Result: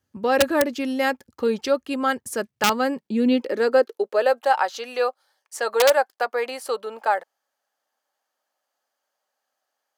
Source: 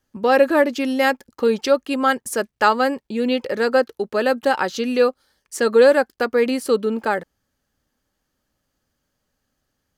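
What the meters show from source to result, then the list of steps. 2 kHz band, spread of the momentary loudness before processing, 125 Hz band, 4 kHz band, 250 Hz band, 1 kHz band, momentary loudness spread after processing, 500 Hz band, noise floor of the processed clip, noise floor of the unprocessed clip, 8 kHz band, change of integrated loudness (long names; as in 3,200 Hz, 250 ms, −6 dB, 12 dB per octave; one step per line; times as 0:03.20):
−3.5 dB, 8 LU, can't be measured, −0.5 dB, −3.0 dB, −2.0 dB, 8 LU, −4.0 dB, −81 dBFS, −76 dBFS, +1.0 dB, −3.5 dB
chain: wrap-around overflow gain 4.5 dB
high-pass filter sweep 80 Hz → 720 Hz, 0:02.20–0:04.48
level −4.5 dB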